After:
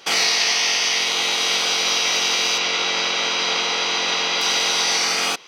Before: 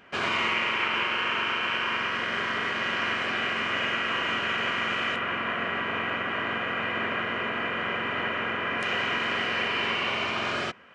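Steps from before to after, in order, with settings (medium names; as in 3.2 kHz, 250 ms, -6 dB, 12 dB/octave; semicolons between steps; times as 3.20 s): speed mistake 7.5 ips tape played at 15 ips; bass shelf 120 Hz -8.5 dB; trim +8 dB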